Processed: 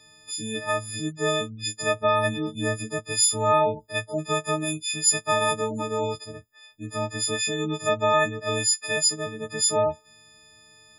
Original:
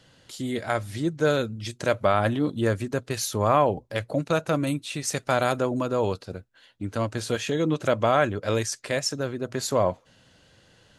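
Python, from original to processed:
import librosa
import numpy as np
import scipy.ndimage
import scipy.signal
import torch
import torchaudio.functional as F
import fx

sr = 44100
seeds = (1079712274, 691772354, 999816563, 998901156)

y = fx.freq_snap(x, sr, grid_st=6)
y = fx.spec_gate(y, sr, threshold_db=-30, keep='strong')
y = F.gain(torch.from_numpy(y), -4.0).numpy()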